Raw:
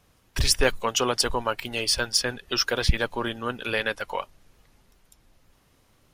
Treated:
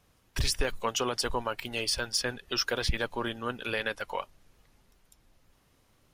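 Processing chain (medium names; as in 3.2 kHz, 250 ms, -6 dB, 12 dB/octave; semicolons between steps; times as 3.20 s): peak limiter -13 dBFS, peak gain reduction 8 dB; trim -4 dB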